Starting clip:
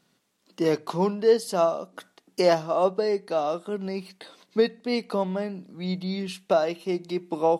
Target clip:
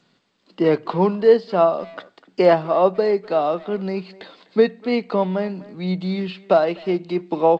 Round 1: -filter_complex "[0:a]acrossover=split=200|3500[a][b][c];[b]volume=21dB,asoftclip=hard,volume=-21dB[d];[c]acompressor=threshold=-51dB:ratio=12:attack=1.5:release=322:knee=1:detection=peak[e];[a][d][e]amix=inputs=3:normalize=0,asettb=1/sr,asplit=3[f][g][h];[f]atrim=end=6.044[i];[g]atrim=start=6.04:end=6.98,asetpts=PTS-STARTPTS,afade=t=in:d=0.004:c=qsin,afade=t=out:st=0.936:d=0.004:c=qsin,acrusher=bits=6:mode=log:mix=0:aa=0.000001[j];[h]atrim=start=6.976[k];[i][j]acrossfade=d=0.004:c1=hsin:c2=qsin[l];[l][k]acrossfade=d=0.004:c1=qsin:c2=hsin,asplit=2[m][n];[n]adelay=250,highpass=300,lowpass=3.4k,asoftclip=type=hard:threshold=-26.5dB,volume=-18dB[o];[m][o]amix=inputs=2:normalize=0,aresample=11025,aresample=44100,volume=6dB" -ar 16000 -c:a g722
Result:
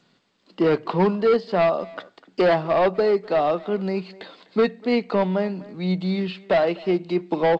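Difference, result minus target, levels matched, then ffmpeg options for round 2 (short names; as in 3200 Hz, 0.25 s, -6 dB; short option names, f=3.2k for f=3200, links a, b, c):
overloaded stage: distortion +40 dB
-filter_complex "[0:a]acrossover=split=200|3500[a][b][c];[b]volume=10.5dB,asoftclip=hard,volume=-10.5dB[d];[c]acompressor=threshold=-51dB:ratio=12:attack=1.5:release=322:knee=1:detection=peak[e];[a][d][e]amix=inputs=3:normalize=0,asettb=1/sr,asplit=3[f][g][h];[f]atrim=end=6.044[i];[g]atrim=start=6.04:end=6.98,asetpts=PTS-STARTPTS,afade=t=in:d=0.004:c=qsin,afade=t=out:st=0.936:d=0.004:c=qsin,acrusher=bits=6:mode=log:mix=0:aa=0.000001[j];[h]atrim=start=6.976[k];[i][j]acrossfade=d=0.004:c1=hsin:c2=qsin[l];[l][k]acrossfade=d=0.004:c1=qsin:c2=hsin,asplit=2[m][n];[n]adelay=250,highpass=300,lowpass=3.4k,asoftclip=type=hard:threshold=-26.5dB,volume=-18dB[o];[m][o]amix=inputs=2:normalize=0,aresample=11025,aresample=44100,volume=6dB" -ar 16000 -c:a g722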